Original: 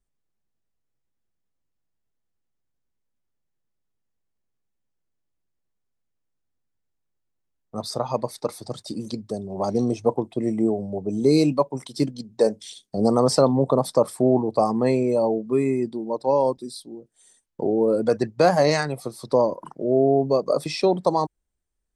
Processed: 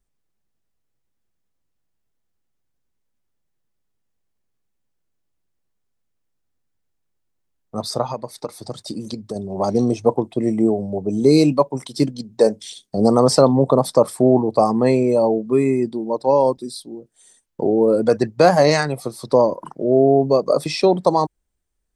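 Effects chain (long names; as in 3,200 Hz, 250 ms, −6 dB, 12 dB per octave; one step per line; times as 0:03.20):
0:08.04–0:09.36: downward compressor 5 to 1, threshold −29 dBFS, peak gain reduction 10.5 dB
level +4.5 dB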